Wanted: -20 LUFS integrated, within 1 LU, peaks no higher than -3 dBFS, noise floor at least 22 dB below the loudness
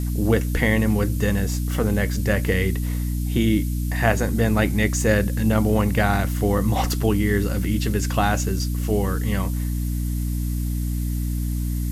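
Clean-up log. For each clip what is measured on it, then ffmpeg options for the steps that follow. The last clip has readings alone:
hum 60 Hz; highest harmonic 300 Hz; hum level -22 dBFS; noise floor -25 dBFS; noise floor target -45 dBFS; loudness -22.5 LUFS; peak level -4.5 dBFS; loudness target -20.0 LUFS
-> -af "bandreject=f=60:t=h:w=4,bandreject=f=120:t=h:w=4,bandreject=f=180:t=h:w=4,bandreject=f=240:t=h:w=4,bandreject=f=300:t=h:w=4"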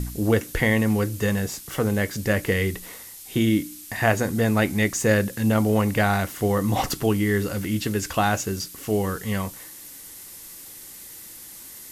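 hum not found; noise floor -42 dBFS; noise floor target -46 dBFS
-> -af "afftdn=nr=6:nf=-42"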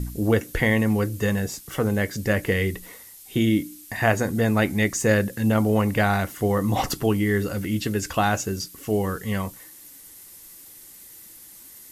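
noise floor -46 dBFS; loudness -23.5 LUFS; peak level -5.0 dBFS; loudness target -20.0 LUFS
-> -af "volume=1.5,alimiter=limit=0.708:level=0:latency=1"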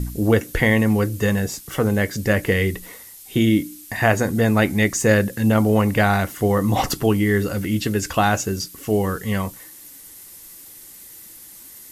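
loudness -20.0 LUFS; peak level -3.0 dBFS; noise floor -43 dBFS

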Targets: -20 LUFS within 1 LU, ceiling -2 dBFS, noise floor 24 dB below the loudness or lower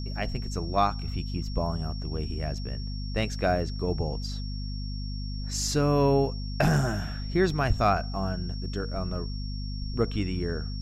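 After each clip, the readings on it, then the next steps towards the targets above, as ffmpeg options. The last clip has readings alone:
hum 50 Hz; highest harmonic 250 Hz; hum level -31 dBFS; steady tone 5.5 kHz; tone level -43 dBFS; loudness -29.0 LUFS; peak level -11.0 dBFS; loudness target -20.0 LUFS
-> -af "bandreject=f=50:t=h:w=4,bandreject=f=100:t=h:w=4,bandreject=f=150:t=h:w=4,bandreject=f=200:t=h:w=4,bandreject=f=250:t=h:w=4"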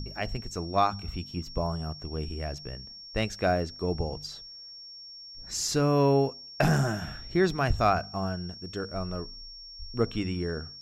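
hum not found; steady tone 5.5 kHz; tone level -43 dBFS
-> -af "bandreject=f=5500:w=30"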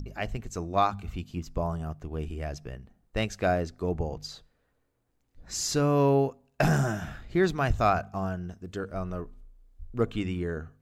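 steady tone not found; loudness -29.5 LUFS; peak level -12.0 dBFS; loudness target -20.0 LUFS
-> -af "volume=2.99"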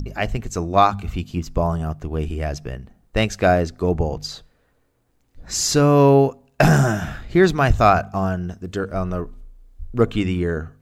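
loudness -20.0 LUFS; peak level -2.5 dBFS; noise floor -63 dBFS

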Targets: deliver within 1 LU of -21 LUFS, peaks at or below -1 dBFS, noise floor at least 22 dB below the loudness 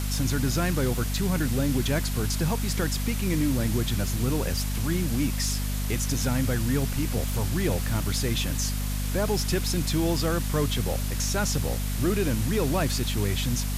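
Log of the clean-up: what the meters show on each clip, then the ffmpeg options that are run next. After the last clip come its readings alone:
hum 50 Hz; highest harmonic 250 Hz; hum level -26 dBFS; noise floor -28 dBFS; noise floor target -49 dBFS; loudness -26.5 LUFS; peak level -13.0 dBFS; loudness target -21.0 LUFS
-> -af "bandreject=f=50:t=h:w=4,bandreject=f=100:t=h:w=4,bandreject=f=150:t=h:w=4,bandreject=f=200:t=h:w=4,bandreject=f=250:t=h:w=4"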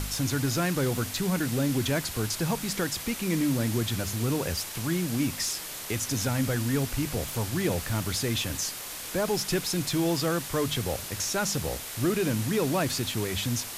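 hum not found; noise floor -38 dBFS; noise floor target -50 dBFS
-> -af "afftdn=nr=12:nf=-38"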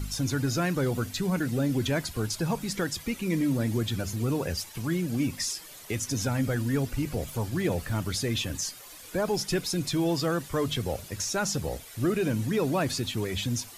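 noise floor -47 dBFS; noise floor target -51 dBFS
-> -af "afftdn=nr=6:nf=-47"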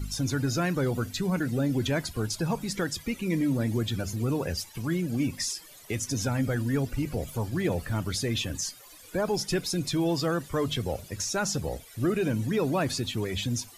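noise floor -50 dBFS; noise floor target -51 dBFS
-> -af "afftdn=nr=6:nf=-50"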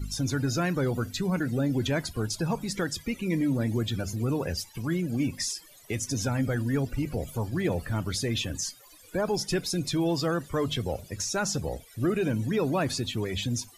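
noise floor -53 dBFS; loudness -29.5 LUFS; peak level -16.0 dBFS; loudness target -21.0 LUFS
-> -af "volume=2.66"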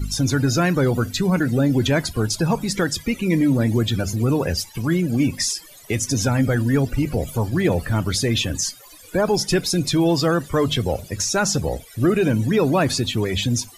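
loudness -21.0 LUFS; peak level -7.5 dBFS; noise floor -45 dBFS

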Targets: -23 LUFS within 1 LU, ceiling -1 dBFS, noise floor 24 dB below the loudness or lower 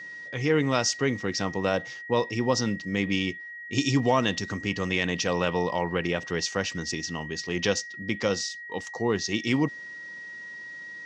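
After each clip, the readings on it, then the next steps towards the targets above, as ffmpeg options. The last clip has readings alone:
steady tone 1.9 kHz; tone level -38 dBFS; loudness -27.5 LUFS; peak level -9.0 dBFS; loudness target -23.0 LUFS
-> -af "bandreject=f=1900:w=30"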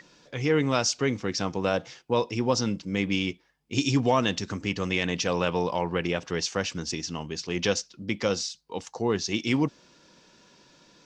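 steady tone not found; loudness -27.5 LUFS; peak level -9.5 dBFS; loudness target -23.0 LUFS
-> -af "volume=1.68"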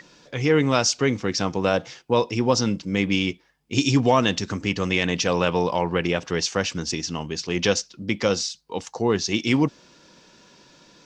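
loudness -23.0 LUFS; peak level -5.0 dBFS; noise floor -56 dBFS

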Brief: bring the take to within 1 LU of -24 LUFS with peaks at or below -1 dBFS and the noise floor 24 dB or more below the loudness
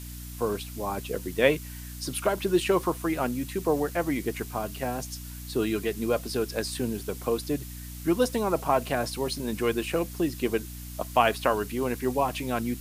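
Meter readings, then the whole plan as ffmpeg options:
hum 60 Hz; highest harmonic 300 Hz; hum level -38 dBFS; noise floor -40 dBFS; noise floor target -53 dBFS; loudness -28.5 LUFS; peak level -6.0 dBFS; loudness target -24.0 LUFS
-> -af "bandreject=f=60:t=h:w=6,bandreject=f=120:t=h:w=6,bandreject=f=180:t=h:w=6,bandreject=f=240:t=h:w=6,bandreject=f=300:t=h:w=6"
-af "afftdn=nr=13:nf=-40"
-af "volume=1.68"

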